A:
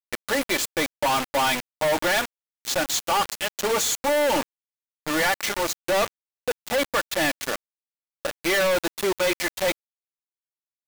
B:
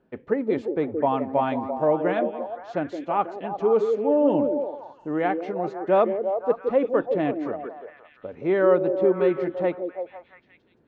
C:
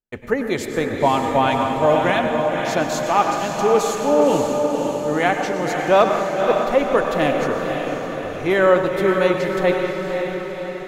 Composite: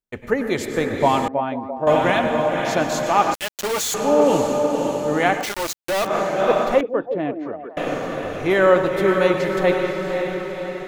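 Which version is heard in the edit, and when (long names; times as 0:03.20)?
C
0:01.28–0:01.87: punch in from B
0:03.34–0:03.94: punch in from A
0:05.43–0:06.08: punch in from A, crossfade 0.16 s
0:06.81–0:07.77: punch in from B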